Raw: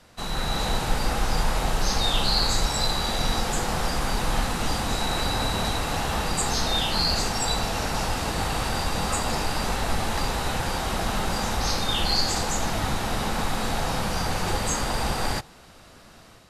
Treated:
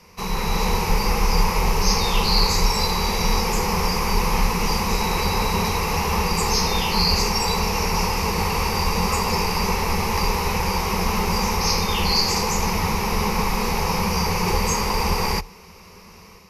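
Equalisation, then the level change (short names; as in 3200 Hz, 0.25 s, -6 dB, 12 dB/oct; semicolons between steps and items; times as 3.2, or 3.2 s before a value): ripple EQ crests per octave 0.82, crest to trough 14 dB; +2.5 dB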